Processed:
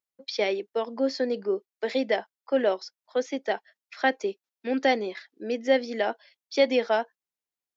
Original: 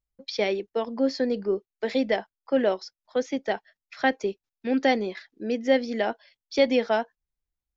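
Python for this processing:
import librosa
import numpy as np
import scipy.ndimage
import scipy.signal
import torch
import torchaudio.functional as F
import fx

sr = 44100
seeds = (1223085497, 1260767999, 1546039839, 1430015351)

y = scipy.signal.sosfilt(scipy.signal.butter(2, 280.0, 'highpass', fs=sr, output='sos'), x)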